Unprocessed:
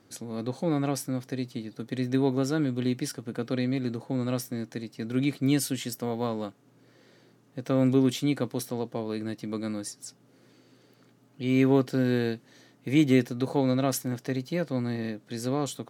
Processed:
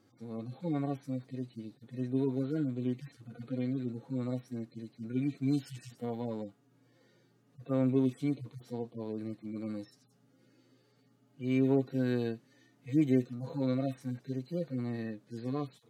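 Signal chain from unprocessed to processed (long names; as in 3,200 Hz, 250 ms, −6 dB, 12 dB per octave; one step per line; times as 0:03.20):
harmonic-percussive split with one part muted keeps harmonic
level −5.5 dB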